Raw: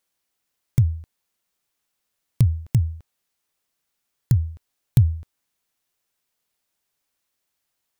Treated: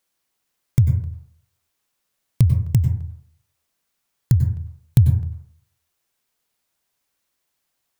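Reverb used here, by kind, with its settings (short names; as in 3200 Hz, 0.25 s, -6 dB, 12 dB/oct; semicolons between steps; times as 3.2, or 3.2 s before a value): plate-style reverb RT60 0.6 s, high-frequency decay 0.3×, pre-delay 85 ms, DRR 6 dB; gain +2 dB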